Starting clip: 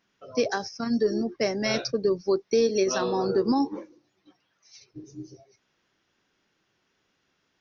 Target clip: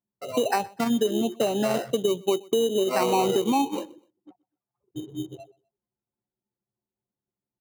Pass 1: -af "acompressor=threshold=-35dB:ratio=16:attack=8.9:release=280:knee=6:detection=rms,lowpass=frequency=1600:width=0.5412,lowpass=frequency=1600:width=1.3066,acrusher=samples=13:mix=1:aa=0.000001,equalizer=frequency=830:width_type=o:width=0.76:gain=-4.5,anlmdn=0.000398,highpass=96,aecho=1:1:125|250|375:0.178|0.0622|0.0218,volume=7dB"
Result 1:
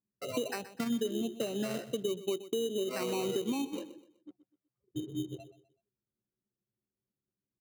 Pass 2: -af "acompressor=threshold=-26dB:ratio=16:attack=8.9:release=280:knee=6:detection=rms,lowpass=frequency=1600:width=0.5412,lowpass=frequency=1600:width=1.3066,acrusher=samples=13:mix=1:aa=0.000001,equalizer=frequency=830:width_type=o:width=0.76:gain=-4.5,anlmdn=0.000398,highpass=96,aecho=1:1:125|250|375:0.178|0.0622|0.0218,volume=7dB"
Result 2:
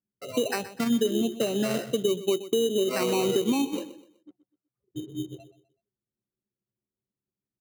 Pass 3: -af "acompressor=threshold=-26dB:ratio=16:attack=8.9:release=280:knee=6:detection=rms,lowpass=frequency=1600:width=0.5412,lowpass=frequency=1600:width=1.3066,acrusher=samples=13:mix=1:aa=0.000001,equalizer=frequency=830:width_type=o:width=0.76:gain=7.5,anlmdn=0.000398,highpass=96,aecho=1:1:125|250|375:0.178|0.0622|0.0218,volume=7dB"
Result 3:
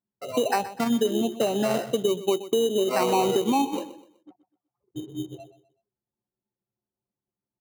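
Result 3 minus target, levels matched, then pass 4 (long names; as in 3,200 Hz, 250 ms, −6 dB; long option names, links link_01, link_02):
echo-to-direct +9.5 dB
-af "acompressor=threshold=-26dB:ratio=16:attack=8.9:release=280:knee=6:detection=rms,lowpass=frequency=1600:width=0.5412,lowpass=frequency=1600:width=1.3066,acrusher=samples=13:mix=1:aa=0.000001,equalizer=frequency=830:width_type=o:width=0.76:gain=7.5,anlmdn=0.000398,highpass=96,aecho=1:1:125|250:0.0596|0.0208,volume=7dB"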